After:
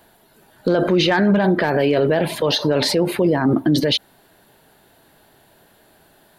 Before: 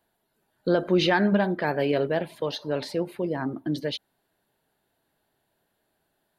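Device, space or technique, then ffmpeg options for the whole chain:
loud club master: -af "acompressor=threshold=-24dB:ratio=2,asoftclip=type=hard:threshold=-17dB,alimiter=level_in=28.5dB:limit=-1dB:release=50:level=0:latency=1,volume=-8dB"

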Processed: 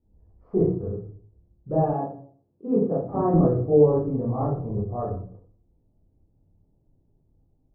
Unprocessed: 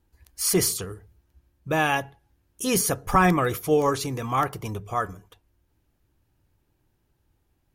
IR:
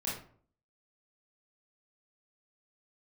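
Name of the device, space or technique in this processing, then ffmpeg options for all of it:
next room: -filter_complex "[0:a]lowpass=f=680:w=0.5412,lowpass=f=680:w=1.3066[a];[1:a]atrim=start_sample=2205[b];[a][b]afir=irnorm=-1:irlink=0,asettb=1/sr,asplit=3[c][d][e];[c]atrim=end=1.934[f];[d]atrim=start=1.93:end=3.34,asetpts=PTS-STARTPTS,afade=t=in:d=0.004:c=qsin,afade=t=out:st=1.406:d=0.004:c=qsin,highpass=170[g];[e]atrim=start=3.336[h];[f][g]acrossfade=d=0.004:c1=hsin:c2=qsin[i];[i][h]acrossfade=d=0.004:c1=qsin:c2=hsin"

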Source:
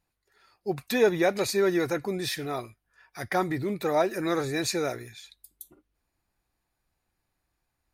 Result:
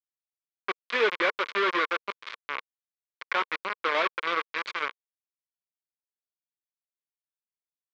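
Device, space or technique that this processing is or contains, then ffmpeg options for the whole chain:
hand-held game console: -filter_complex "[0:a]asplit=3[a][b][c];[a]afade=t=out:st=4.36:d=0.02[d];[b]adynamicequalizer=threshold=0.00708:dfrequency=630:dqfactor=1.6:tfrequency=630:tqfactor=1.6:attack=5:release=100:ratio=0.375:range=2:mode=cutabove:tftype=bell,afade=t=in:st=4.36:d=0.02,afade=t=out:st=4.89:d=0.02[e];[c]afade=t=in:st=4.89:d=0.02[f];[d][e][f]amix=inputs=3:normalize=0,acrusher=bits=3:mix=0:aa=0.000001,highpass=440,equalizer=f=470:t=q:w=4:g=4,equalizer=f=740:t=q:w=4:g=-9,equalizer=f=1.1k:t=q:w=4:g=10,equalizer=f=1.5k:t=q:w=4:g=6,equalizer=f=2.2k:t=q:w=4:g=8,equalizer=f=3.3k:t=q:w=4:g=3,lowpass=f=4k:w=0.5412,lowpass=f=4k:w=1.3066,volume=-4dB"

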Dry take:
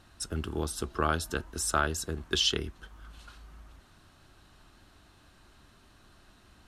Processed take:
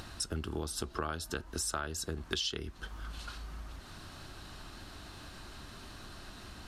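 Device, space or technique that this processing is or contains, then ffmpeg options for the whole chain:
upward and downward compression: -af "equalizer=f=4.7k:w=2.4:g=4,acompressor=mode=upward:threshold=-47dB:ratio=2.5,acompressor=threshold=-40dB:ratio=5,volume=6dB"

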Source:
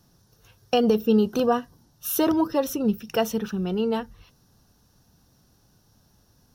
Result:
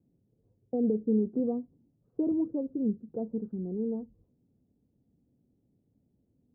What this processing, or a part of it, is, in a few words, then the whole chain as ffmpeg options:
under water: -af "highpass=f=110:p=1,lowpass=f=510:w=0.5412,lowpass=f=510:w=1.3066,equalizer=f=260:t=o:w=0.52:g=7,volume=-8.5dB"

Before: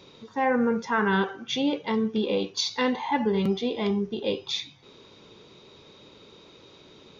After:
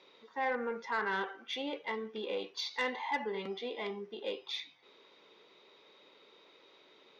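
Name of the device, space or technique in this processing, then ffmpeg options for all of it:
intercom: -filter_complex "[0:a]highpass=450,lowpass=4.1k,equalizer=f=2k:t=o:w=0.24:g=6.5,asoftclip=type=tanh:threshold=-17dB,asettb=1/sr,asplit=3[a][b][c];[a]atrim=end=2.744[d];[b]atrim=start=2.74:end=3.24,asetpts=PTS-STARTPTS,afade=t=in:d=0.004:c=qsin,afade=t=out:st=0.496:d=0.004:c=qsin,highshelf=f=5.5k:g=6.5[e];[c]atrim=start=3.236[f];[d][e]acrossfade=d=0.004:c1=hsin:c2=qsin[g];[g][f]acrossfade=d=0.004:c1=qsin:c2=hsin,volume=-7dB"

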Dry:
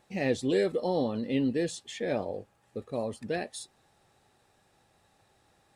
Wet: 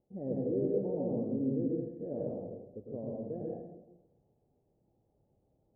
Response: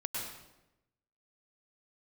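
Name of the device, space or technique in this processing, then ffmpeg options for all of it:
next room: -filter_complex "[0:a]lowpass=f=570:w=0.5412,lowpass=f=570:w=1.3066[a];[1:a]atrim=start_sample=2205[b];[a][b]afir=irnorm=-1:irlink=0,volume=-6dB"

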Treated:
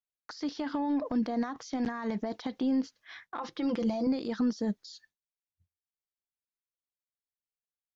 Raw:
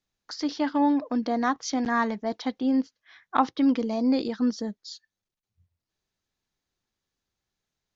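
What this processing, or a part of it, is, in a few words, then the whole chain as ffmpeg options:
de-esser from a sidechain: -filter_complex "[0:a]agate=range=-33dB:threshold=-53dB:ratio=3:detection=peak,asettb=1/sr,asplit=3[a][b][c];[a]atrim=end=3.364[d];[b]atrim=start=3.36:end=4.07,asetpts=PTS-STARTPTS,afade=t=in:d=0.004:c=qsin,afade=t=out:st=0.706:d=0.004:c=qsin,aecho=1:1:5.8:0.88,atrim=end_sample=31311[e];[c]atrim=start=4.066[f];[d][e]acrossfade=d=0.004:c1=hsin:c2=qsin[g];[g][f]acrossfade=d=0.004:c1=qsin:c2=hsin,asplit=2[h][i];[i]highpass=f=4.6k:p=1,apad=whole_len=350820[j];[h][j]sidechaincompress=threshold=-54dB:ratio=8:attack=2.3:release=36,volume=6.5dB"

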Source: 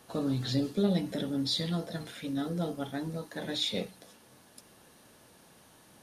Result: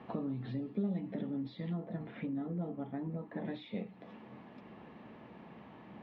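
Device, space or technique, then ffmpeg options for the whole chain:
bass amplifier: -filter_complex "[0:a]asettb=1/sr,asplit=3[a][b][c];[a]atrim=end=1.734[d];[b]atrim=start=1.73:end=3.45,asetpts=PTS-STARTPTS,afade=t=in:d=0.004:c=qsin,afade=t=out:st=1.716:d=0.004:c=qsin,lowpass=f=1.7k:p=1[e];[c]atrim=start=3.446[f];[d][e]acrossfade=d=0.004:c1=hsin:c2=qsin[g];[g][f]acrossfade=d=0.004:c1=qsin:c2=hsin,acompressor=threshold=-46dB:ratio=4,highpass=64,equalizer=f=93:t=q:w=4:g=-7,equalizer=f=210:t=q:w=4:g=6,equalizer=f=540:t=q:w=4:g=-4,equalizer=f=1.5k:t=q:w=4:g=-10,lowpass=f=2.3k:w=0.5412,lowpass=f=2.3k:w=1.3066,volume=7.5dB"

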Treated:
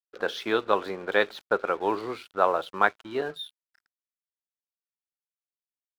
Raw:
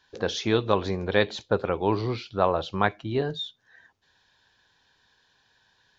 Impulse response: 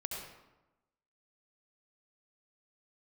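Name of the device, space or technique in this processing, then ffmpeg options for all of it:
pocket radio on a weak battery: -af "highpass=350,lowpass=3.7k,aeval=exprs='sgn(val(0))*max(abs(val(0))-0.00398,0)':c=same,equalizer=f=1.4k:t=o:w=0.42:g=7"

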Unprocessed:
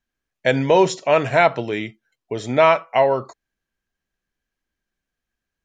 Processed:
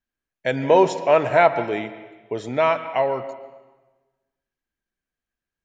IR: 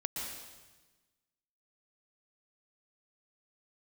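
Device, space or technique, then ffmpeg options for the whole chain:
filtered reverb send: -filter_complex "[0:a]asplit=2[a][b];[b]highpass=f=180:p=1,lowpass=3.4k[c];[1:a]atrim=start_sample=2205[d];[c][d]afir=irnorm=-1:irlink=0,volume=-10dB[e];[a][e]amix=inputs=2:normalize=0,asettb=1/sr,asplit=3[f][g][h];[f]atrim=end=0.634[i];[g]atrim=start=0.63:end=2.49,asetpts=PTS-STARTPTS,afade=t=in:d=0.004:c=qsin,afade=t=out:st=1.856:d=0.004:c=qsin,equalizer=f=690:w=0.44:g=5.5[j];[h]atrim=start=2.486[k];[i][j]acrossfade=d=0.004:c1=hsin:c2=qsin[l];[l][k]acrossfade=d=0.004:c1=qsin:c2=hsin,volume=-7dB"

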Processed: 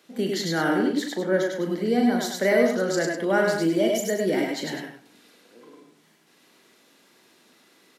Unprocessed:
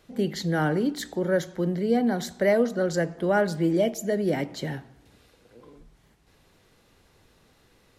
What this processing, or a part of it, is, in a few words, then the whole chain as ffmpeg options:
slapback doubling: -filter_complex "[0:a]asettb=1/sr,asplit=3[a][b][c];[a]atrim=end=0.764[d];[b]atrim=start=0.76:end=1.51,asetpts=PTS-STARTPTS,afade=t=in:d=0.004:c=qsin,afade=t=out:st=0.746:d=0.004:c=qsin,aemphasis=mode=reproduction:type=cd[e];[c]atrim=start=1.506[f];[d][e]acrossfade=d=0.004:c1=hsin:c2=qsin[g];[g][f]acrossfade=d=0.004:c1=qsin:c2=hsin,highpass=f=210:w=0.5412,highpass=f=210:w=1.3066,equalizer=f=590:t=o:w=2.2:g=-5,aecho=1:1:102:0.501,asplit=3[h][i][j];[i]adelay=37,volume=-7dB[k];[j]adelay=99,volume=-4.5dB[l];[h][k][l]amix=inputs=3:normalize=0,volume=3.5dB"

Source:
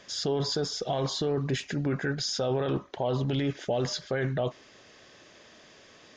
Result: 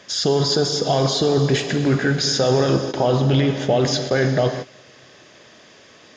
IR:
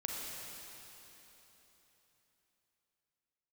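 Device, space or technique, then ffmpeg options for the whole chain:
keyed gated reverb: -filter_complex "[0:a]asplit=3[a][b][c];[1:a]atrim=start_sample=2205[d];[b][d]afir=irnorm=-1:irlink=0[e];[c]apad=whole_len=272015[f];[e][f]sidechaingate=range=-23dB:threshold=-44dB:ratio=16:detection=peak,volume=-2.5dB[g];[a][g]amix=inputs=2:normalize=0,highpass=62,volume=6dB"

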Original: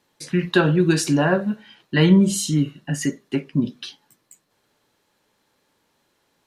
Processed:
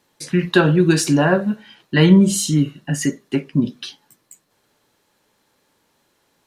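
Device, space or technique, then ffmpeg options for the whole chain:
exciter from parts: -filter_complex "[0:a]asplit=2[a][b];[b]highpass=4.8k,asoftclip=type=tanh:threshold=-30dB,volume=-10.5dB[c];[a][c]amix=inputs=2:normalize=0,volume=3dB"

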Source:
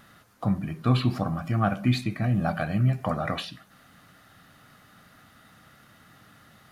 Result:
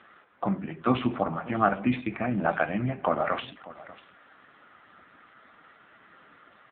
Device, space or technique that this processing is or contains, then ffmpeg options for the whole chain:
satellite phone: -af "highpass=310,lowpass=3.1k,aecho=1:1:592:0.119,volume=6dB" -ar 8000 -c:a libopencore_amrnb -b:a 5900

